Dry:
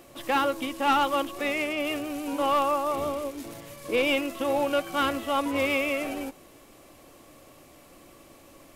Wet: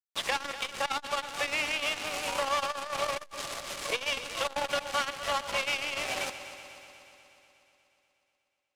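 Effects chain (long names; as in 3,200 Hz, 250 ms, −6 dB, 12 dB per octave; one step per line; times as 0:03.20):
phase distortion by the signal itself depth 0.066 ms
high-pass filter 510 Hz 24 dB per octave
spectral tilt +3 dB per octave
downward compressor 20 to 1, threshold −33 dBFS, peak gain reduction 16 dB
bit-depth reduction 6 bits, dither none
high-frequency loss of the air 73 metres
on a send: echo machine with several playback heads 121 ms, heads first and second, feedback 68%, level −17 dB
on the sum: saturating transformer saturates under 1,000 Hz
level +8.5 dB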